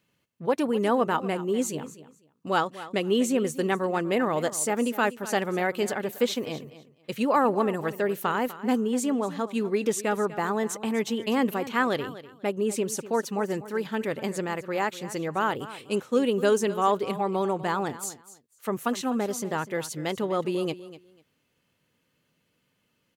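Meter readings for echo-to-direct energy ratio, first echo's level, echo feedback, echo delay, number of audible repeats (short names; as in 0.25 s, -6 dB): -15.5 dB, -15.5 dB, 19%, 0.247 s, 2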